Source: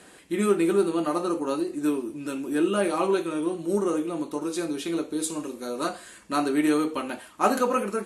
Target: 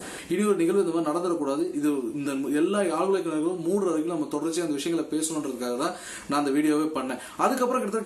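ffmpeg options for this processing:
ffmpeg -i in.wav -filter_complex "[0:a]asplit=2[link_01][link_02];[link_02]acompressor=mode=upward:threshold=-25dB:ratio=2.5,volume=-1.5dB[link_03];[link_01][link_03]amix=inputs=2:normalize=0,adynamicequalizer=threshold=0.0158:dfrequency=2400:dqfactor=0.76:tfrequency=2400:tqfactor=0.76:attack=5:release=100:ratio=0.375:range=2.5:mode=cutabove:tftype=bell,acompressor=threshold=-30dB:ratio=1.5" out.wav

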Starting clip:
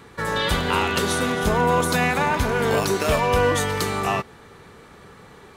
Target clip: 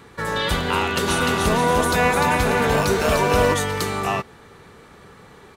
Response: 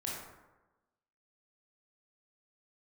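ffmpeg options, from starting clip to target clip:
-filter_complex "[0:a]asplit=3[link_01][link_02][link_03];[link_01]afade=type=out:start_time=1.07:duration=0.02[link_04];[link_02]aecho=1:1:300|480|588|652.8|691.7:0.631|0.398|0.251|0.158|0.1,afade=type=in:start_time=1.07:duration=0.02,afade=type=out:start_time=3.53:duration=0.02[link_05];[link_03]afade=type=in:start_time=3.53:duration=0.02[link_06];[link_04][link_05][link_06]amix=inputs=3:normalize=0"

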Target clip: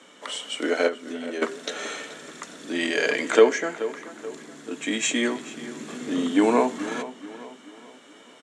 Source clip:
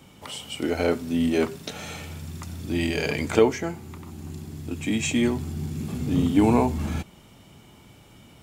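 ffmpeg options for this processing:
ffmpeg -i in.wav -filter_complex "[0:a]asettb=1/sr,asplit=3[link_01][link_02][link_03];[link_01]atrim=end=0.874[link_04];[link_02]atrim=start=0.87:end=1.42,asetpts=PTS-STARTPTS,afade=type=in:duration=0.004:curve=qsin,afade=type=out:start_time=0.546:duration=0.004:curve=qsin,acompressor=threshold=-29dB:ratio=12[link_05];[link_03]atrim=start=1.416[link_06];[link_04][link_05]acrossfade=duration=0.004:curve1=hsin:curve2=qsin[link_07];[link_07][link_06]acrossfade=duration=0.004:curve1=qsin:curve2=hsin,highpass=frequency=310:width=0.5412,highpass=frequency=310:width=1.3066,equalizer=frequency=360:width_type=q:width=4:gain=-7,equalizer=frequency=820:width_type=q:width=4:gain=-9,equalizer=frequency=1700:width_type=q:width=4:gain=5,equalizer=frequency=2500:width_type=q:width=4:gain=-6,equalizer=frequency=4900:width_type=q:width=4:gain=-8,lowpass=frequency=8100:width=0.5412,lowpass=frequency=8100:width=1.3066,asplit=2[link_08][link_09];[link_09]adelay=430,lowpass=frequency=3500:poles=1,volume=-14dB,asplit=2[link_10][link_11];[link_11]adelay=430,lowpass=frequency=3500:poles=1,volume=0.44,asplit=2[link_12][link_13];[link_13]adelay=430,lowpass=frequency=3500:poles=1,volume=0.44,asplit=2[link_14][link_15];[link_15]adelay=430,lowpass=frequency=3500:poles=1,volume=0.44[link_16];[link_08][link_10][link_12][link_14][link_16]amix=inputs=5:normalize=0,volume=6dB" out.wav

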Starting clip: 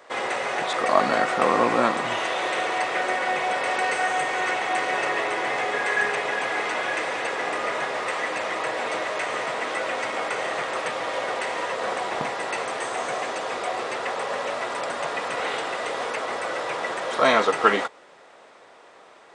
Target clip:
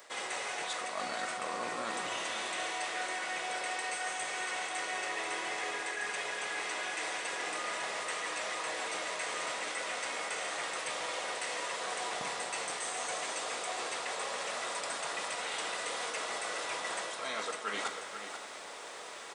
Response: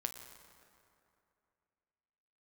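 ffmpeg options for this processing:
-filter_complex "[0:a]crystalizer=i=5.5:c=0,areverse,acompressor=threshold=-34dB:ratio=12,areverse,aecho=1:1:488:0.335[link_01];[1:a]atrim=start_sample=2205[link_02];[link_01][link_02]afir=irnorm=-1:irlink=0"

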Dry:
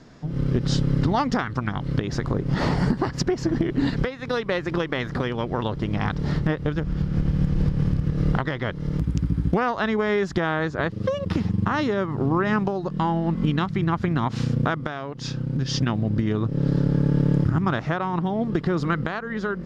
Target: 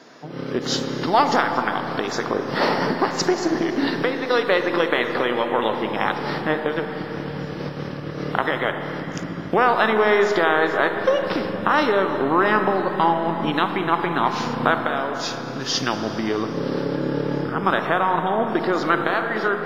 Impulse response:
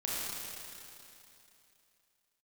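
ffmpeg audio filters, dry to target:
-filter_complex "[0:a]highpass=420,aeval=exprs='0.398*(cos(1*acos(clip(val(0)/0.398,-1,1)))-cos(1*PI/2))+0.00708*(cos(4*acos(clip(val(0)/0.398,-1,1)))-cos(4*PI/2))':channel_layout=same,asplit=2[link_01][link_02];[1:a]atrim=start_sample=2205,asetrate=32634,aresample=44100,highshelf=frequency=2900:gain=-10.5[link_03];[link_02][link_03]afir=irnorm=-1:irlink=0,volume=-8.5dB[link_04];[link_01][link_04]amix=inputs=2:normalize=0,volume=5dB" -ar 32000 -c:a wmav2 -b:a 32k

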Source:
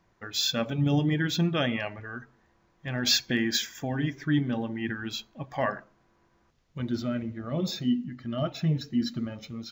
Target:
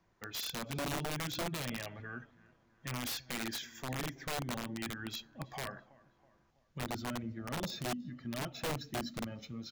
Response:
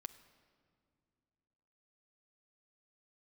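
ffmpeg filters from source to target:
-filter_complex "[0:a]acrossover=split=160|5400[link_01][link_02][link_03];[link_01]acompressor=threshold=-33dB:ratio=4[link_04];[link_02]acompressor=threshold=-33dB:ratio=4[link_05];[link_03]acompressor=threshold=-45dB:ratio=4[link_06];[link_04][link_05][link_06]amix=inputs=3:normalize=0,asplit=2[link_07][link_08];[link_08]adelay=326,lowpass=frequency=3800:poles=1,volume=-23.5dB,asplit=2[link_09][link_10];[link_10]adelay=326,lowpass=frequency=3800:poles=1,volume=0.49,asplit=2[link_11][link_12];[link_12]adelay=326,lowpass=frequency=3800:poles=1,volume=0.49[link_13];[link_07][link_09][link_11][link_13]amix=inputs=4:normalize=0,aeval=exprs='(mod(20*val(0)+1,2)-1)/20':channel_layout=same,volume=-5.5dB"

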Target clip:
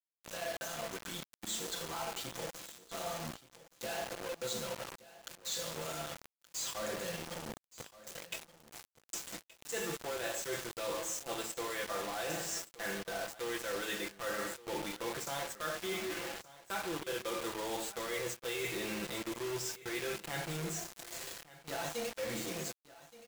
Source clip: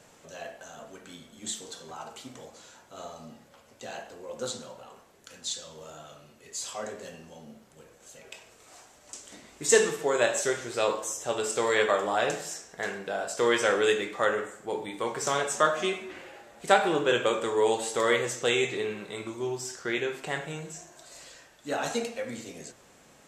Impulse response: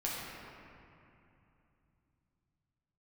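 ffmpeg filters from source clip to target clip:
-af "lowpass=frequency=8500:width=0.5412,lowpass=frequency=8500:width=1.3066,aecho=1:1:5.9:0.92,areverse,acompressor=threshold=-37dB:ratio=12,areverse,acrusher=bits=6:mix=0:aa=0.000001,aecho=1:1:1173:0.126,volume=1dB"

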